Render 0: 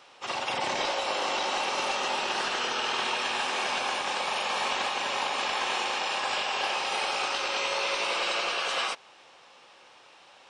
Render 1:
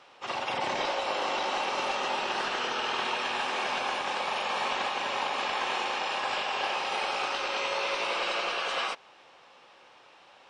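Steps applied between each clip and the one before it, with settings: LPF 3300 Hz 6 dB/oct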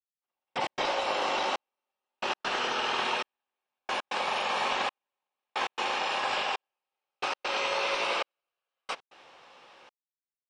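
step gate ".....x.xxxxxxx." 135 bpm -60 dB; gain +1 dB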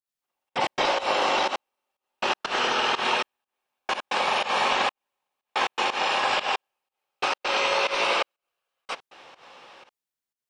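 pump 122 bpm, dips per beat 1, -18 dB, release 0.143 s; gain +6 dB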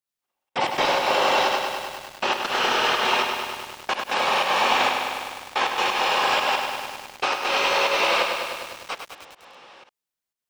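lo-fi delay 0.101 s, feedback 80%, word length 7-bit, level -5.5 dB; gain +1.5 dB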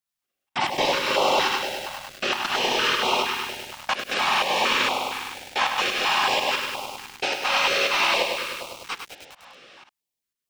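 stepped notch 4.3 Hz 400–1700 Hz; gain +1.5 dB

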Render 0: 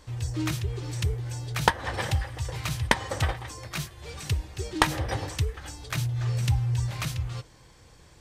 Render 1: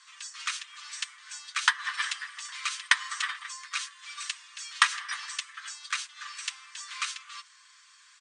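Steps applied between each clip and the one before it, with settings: Chebyshev band-pass 1100–9100 Hz, order 5; comb 6.8 ms, depth 48%; gain +2.5 dB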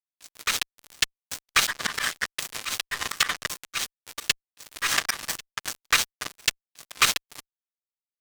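fuzz box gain 28 dB, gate -35 dBFS; auto swell 0.168 s; gain +7 dB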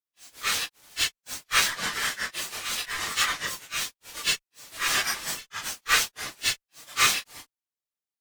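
phase scrambler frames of 0.1 s

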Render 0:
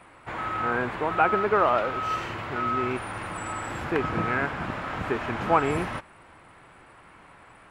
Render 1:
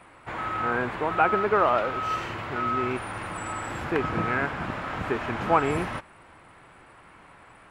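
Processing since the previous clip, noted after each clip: nothing audible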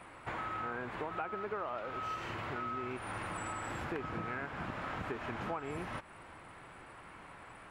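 compressor 6:1, threshold -36 dBFS, peak gain reduction 19 dB; gain -1 dB

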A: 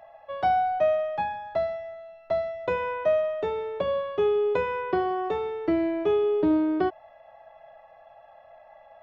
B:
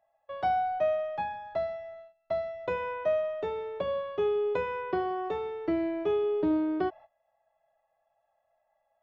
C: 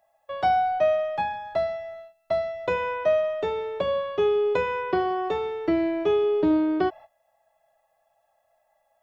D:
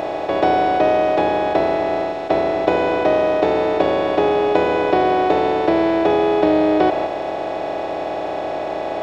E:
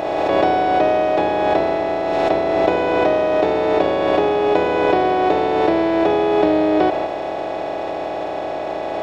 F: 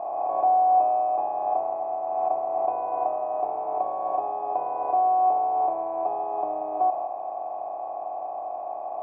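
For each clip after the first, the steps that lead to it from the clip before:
gate -43 dBFS, range -19 dB; gain -4.5 dB
high shelf 3800 Hz +8.5 dB; gain +5.5 dB
per-bin compression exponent 0.2; gain +1 dB
backwards sustainer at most 22 dB/s; gain -1 dB
vocal tract filter a

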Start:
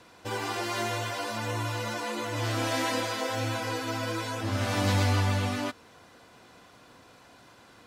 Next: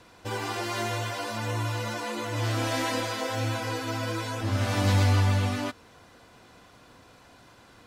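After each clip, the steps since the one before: low shelf 71 Hz +11.5 dB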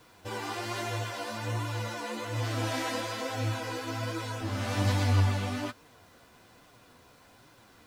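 bit-crush 10-bit; flange 1.2 Hz, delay 6.1 ms, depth 8.9 ms, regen +38%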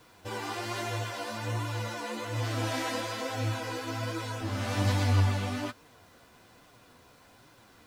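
nothing audible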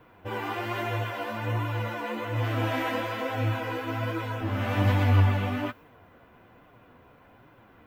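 band shelf 6500 Hz -15 dB; mismatched tape noise reduction decoder only; gain +4 dB

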